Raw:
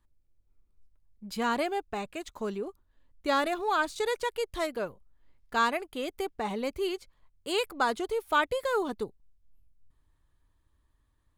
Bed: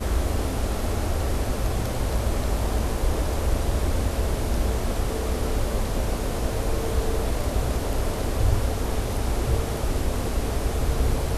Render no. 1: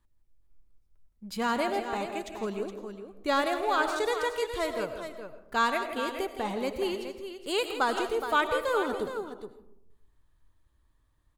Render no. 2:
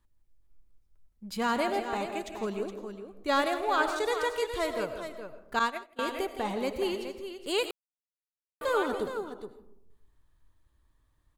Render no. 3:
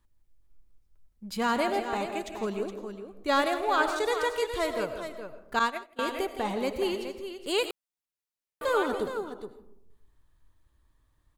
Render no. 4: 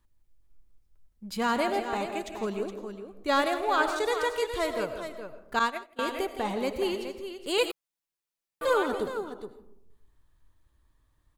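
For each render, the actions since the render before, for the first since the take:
multi-tap delay 165/418 ms −10.5/−9.5 dB; comb and all-pass reverb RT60 0.8 s, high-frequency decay 0.4×, pre-delay 55 ms, DRR 10 dB
0:03.24–0:04.12: multiband upward and downward expander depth 40%; 0:05.59–0:05.99: downward expander −22 dBFS; 0:07.71–0:08.61: silence
level +1.5 dB
0:07.57–0:08.74: comb filter 6 ms

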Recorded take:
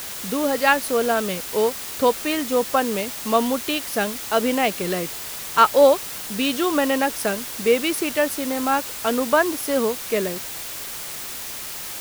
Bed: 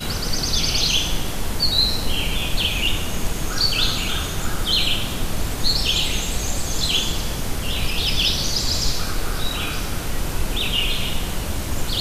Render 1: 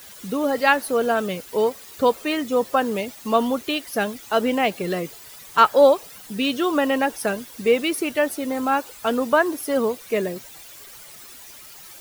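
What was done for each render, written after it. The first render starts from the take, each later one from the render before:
broadband denoise 13 dB, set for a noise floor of −33 dBFS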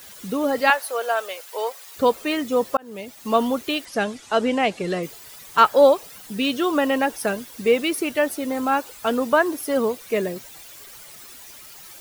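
0:00.70–0:01.96: high-pass filter 550 Hz 24 dB per octave
0:02.77–0:03.34: fade in
0:03.85–0:05.03: low-pass filter 9,000 Hz 24 dB per octave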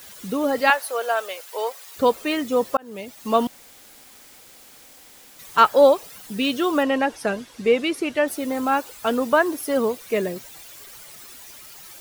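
0:03.47–0:05.39: fill with room tone
0:06.83–0:08.28: high-frequency loss of the air 54 metres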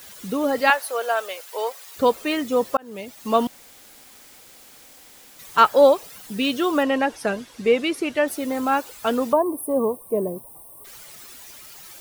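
0:09.33–0:10.85: gain on a spectral selection 1,200–8,200 Hz −26 dB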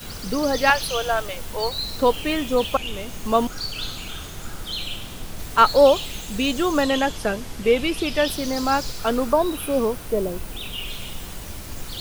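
mix in bed −10.5 dB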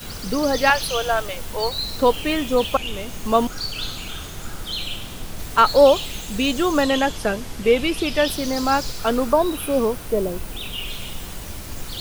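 level +1.5 dB
brickwall limiter −3 dBFS, peak gain reduction 2.5 dB

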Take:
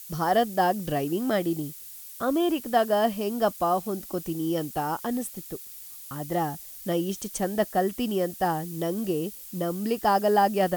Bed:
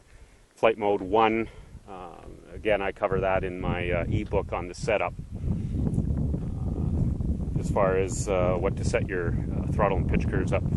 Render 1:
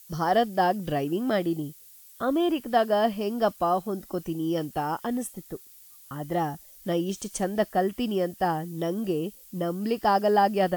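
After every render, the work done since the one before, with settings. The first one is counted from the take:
noise reduction from a noise print 8 dB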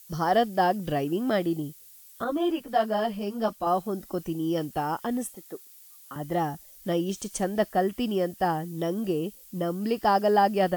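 0:02.24–0:03.67: string-ensemble chorus
0:05.35–0:06.16: high-pass filter 310 Hz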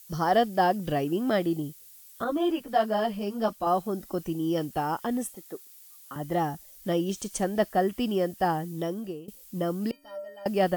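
0:08.72–0:09.28: fade out, to −20.5 dB
0:09.91–0:10.46: stiff-string resonator 280 Hz, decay 0.62 s, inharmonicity 0.03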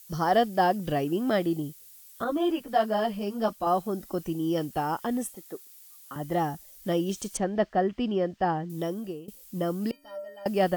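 0:07.37–0:08.70: high-frequency loss of the air 170 metres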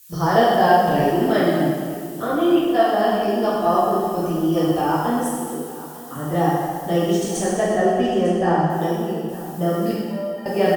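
single-tap delay 901 ms −17 dB
dense smooth reverb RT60 1.9 s, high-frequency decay 0.8×, DRR −8 dB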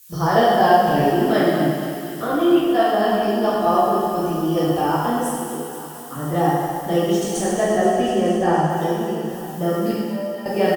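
double-tracking delay 14 ms −10.5 dB
feedback echo with a high-pass in the loop 238 ms, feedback 78%, high-pass 920 Hz, level −11 dB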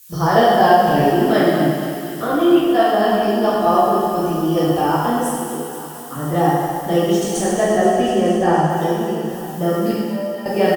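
level +2.5 dB
brickwall limiter −1 dBFS, peak gain reduction 1.5 dB

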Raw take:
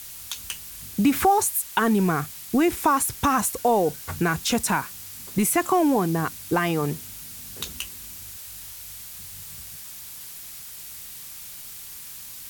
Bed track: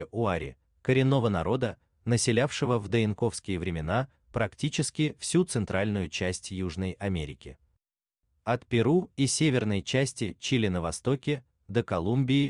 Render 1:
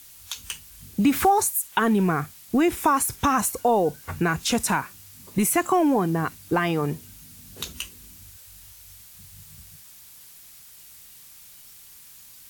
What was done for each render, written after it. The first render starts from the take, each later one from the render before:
noise reduction from a noise print 8 dB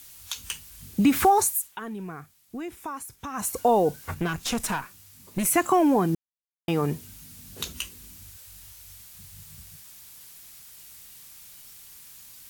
0:01.53–0:03.56: duck −15 dB, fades 0.23 s
0:04.14–0:05.46: tube saturation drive 20 dB, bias 0.75
0:06.15–0:06.68: silence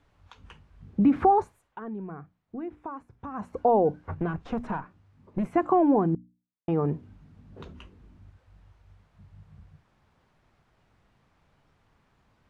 low-pass filter 1,000 Hz 12 dB per octave
mains-hum notches 60/120/180/240/300 Hz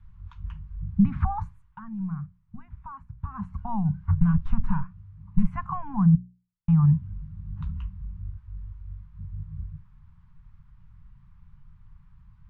elliptic band-stop filter 180–1,000 Hz, stop band 50 dB
spectral tilt −4.5 dB per octave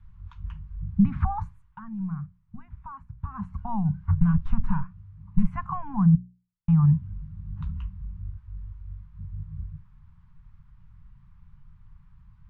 no processing that can be heard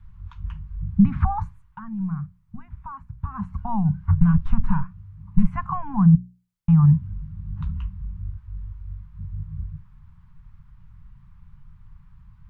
level +4 dB

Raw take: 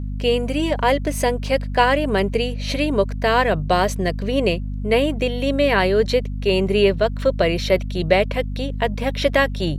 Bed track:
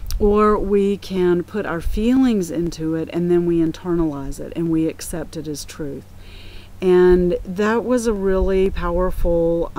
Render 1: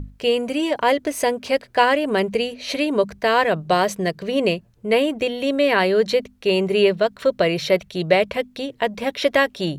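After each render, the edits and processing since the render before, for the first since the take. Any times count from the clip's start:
mains-hum notches 50/100/150/200/250 Hz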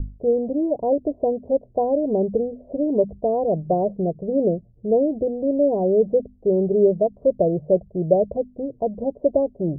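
Butterworth low-pass 710 Hz 48 dB per octave
low-shelf EQ 77 Hz +7.5 dB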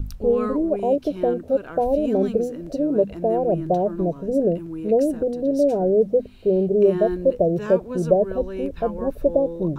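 mix in bed track −13.5 dB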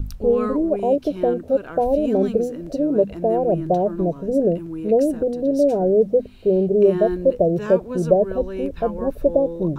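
level +1.5 dB

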